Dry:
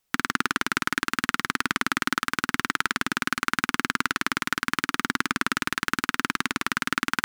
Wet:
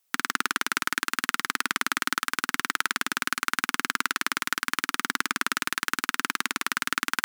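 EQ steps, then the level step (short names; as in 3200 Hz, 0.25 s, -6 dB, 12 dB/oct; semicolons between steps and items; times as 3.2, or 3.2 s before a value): HPF 410 Hz 6 dB/oct; high shelf 6400 Hz +7 dB; -1.5 dB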